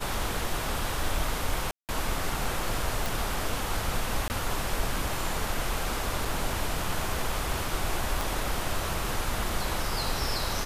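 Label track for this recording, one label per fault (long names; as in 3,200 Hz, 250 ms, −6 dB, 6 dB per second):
1.710000	1.890000	drop-out 178 ms
3.060000	3.060000	click
4.280000	4.300000	drop-out 19 ms
6.250000	6.250000	drop-out 3.6 ms
8.210000	8.210000	click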